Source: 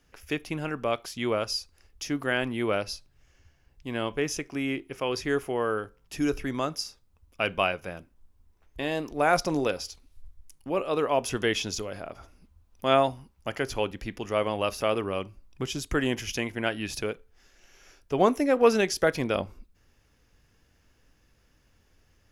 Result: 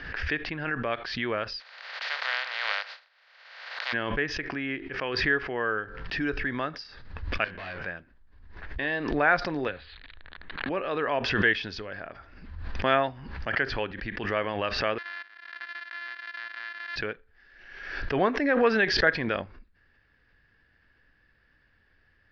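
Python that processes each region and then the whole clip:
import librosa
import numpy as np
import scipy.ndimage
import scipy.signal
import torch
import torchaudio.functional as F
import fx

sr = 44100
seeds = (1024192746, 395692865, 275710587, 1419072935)

y = fx.spec_flatten(x, sr, power=0.15, at=(1.59, 3.92), fade=0.02)
y = fx.steep_highpass(y, sr, hz=510.0, slope=48, at=(1.59, 3.92), fade=0.02)
y = fx.notch(y, sr, hz=1700.0, q=9.0, at=(1.59, 3.92), fade=0.02)
y = fx.chain(y, sr, fx.tube_stage(drive_db=37.0, bias=0.8),
    fx.doubler(ms=22.0, db=-3.5), at=(7.44, 7.86))
y = fx.chain(y, sr, fx.crossing_spikes(level_db=-28.0),
    fx.steep_lowpass(hz=4100.0, slope=72),
    fx.band_squash(depth_pct=100), at=(9.68, 10.69))
y = fx.chain(y, sr, fx.sample_sort(block=128),
    fx.cheby1_highpass(hz=1600.0, order=2),
    fx.level_steps(step_db=14), at=(14.98, 16.96))
y = scipy.signal.sosfilt(scipy.signal.ellip(4, 1.0, 50, 4600.0, 'lowpass', fs=sr, output='sos'), y)
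y = fx.peak_eq(y, sr, hz=1700.0, db=15.0, octaves=0.45)
y = fx.pre_swell(y, sr, db_per_s=48.0)
y = y * librosa.db_to_amplitude(-3.5)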